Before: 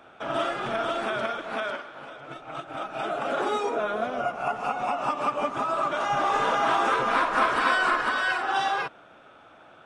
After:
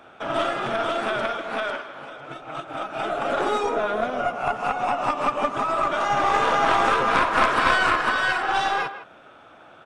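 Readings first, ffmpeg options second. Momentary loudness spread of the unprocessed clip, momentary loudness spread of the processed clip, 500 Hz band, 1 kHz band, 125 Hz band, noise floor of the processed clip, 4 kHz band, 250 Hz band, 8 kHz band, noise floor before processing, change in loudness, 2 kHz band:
13 LU, 13 LU, +3.5 dB, +3.5 dB, +5.5 dB, -49 dBFS, +4.0 dB, +3.5 dB, +4.0 dB, -52 dBFS, +3.5 dB, +3.5 dB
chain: -filter_complex "[0:a]aeval=exprs='0.335*(cos(1*acos(clip(val(0)/0.335,-1,1)))-cos(1*PI/2))+0.0841*(cos(4*acos(clip(val(0)/0.335,-1,1)))-cos(4*PI/2))+0.0266*(cos(6*acos(clip(val(0)/0.335,-1,1)))-cos(6*PI/2))':c=same,asplit=2[a][b];[b]adelay=160,highpass=300,lowpass=3.4k,asoftclip=type=hard:threshold=-16.5dB,volume=-12dB[c];[a][c]amix=inputs=2:normalize=0,volume=3dB"

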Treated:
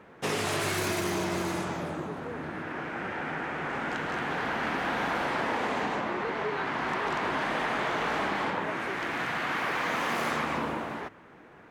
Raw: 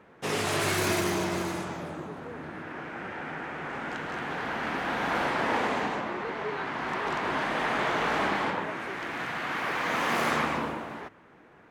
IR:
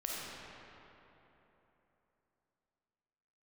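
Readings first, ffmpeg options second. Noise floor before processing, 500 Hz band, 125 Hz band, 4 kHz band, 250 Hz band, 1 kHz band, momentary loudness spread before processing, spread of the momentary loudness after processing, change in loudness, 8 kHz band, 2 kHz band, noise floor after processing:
-55 dBFS, -0.5 dB, -0.5 dB, -1.0 dB, -0.5 dB, -0.5 dB, 12 LU, 7 LU, -0.5 dB, -1.5 dB, -0.5 dB, -52 dBFS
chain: -af "acompressor=threshold=-29dB:ratio=6,volume=3dB"

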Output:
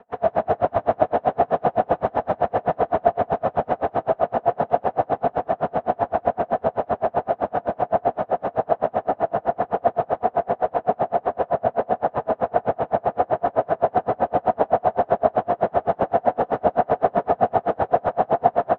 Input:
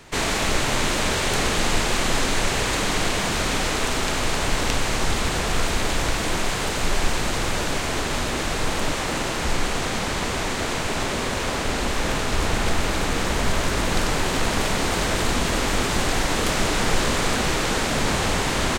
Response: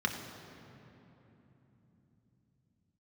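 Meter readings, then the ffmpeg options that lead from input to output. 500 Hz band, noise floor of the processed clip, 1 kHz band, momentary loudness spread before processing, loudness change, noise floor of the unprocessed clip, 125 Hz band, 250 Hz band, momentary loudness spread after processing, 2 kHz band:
+7.0 dB, -52 dBFS, +6.0 dB, 3 LU, +0.5 dB, -26 dBFS, -8.0 dB, -4.5 dB, 3 LU, -12.5 dB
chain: -filter_complex "[0:a]highpass=f=450:w=0.5412,highpass=f=450:w=1.3066,asplit=2[a][b];[b]acrusher=samples=36:mix=1:aa=0.000001,volume=-9.5dB[c];[a][c]amix=inputs=2:normalize=0,lowpass=f=700:t=q:w=6.8[d];[1:a]atrim=start_sample=2205,afade=t=out:st=0.4:d=0.01,atrim=end_sample=18081[e];[d][e]afir=irnorm=-1:irlink=0,aeval=exprs='val(0)*pow(10,-37*(0.5-0.5*cos(2*PI*7.8*n/s))/20)':c=same"

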